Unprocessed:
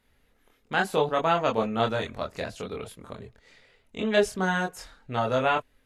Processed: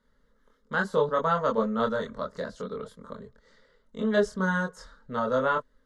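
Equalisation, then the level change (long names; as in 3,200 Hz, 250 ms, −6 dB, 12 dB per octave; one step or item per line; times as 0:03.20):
high-frequency loss of the air 92 metres
phaser with its sweep stopped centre 500 Hz, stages 8
+2.0 dB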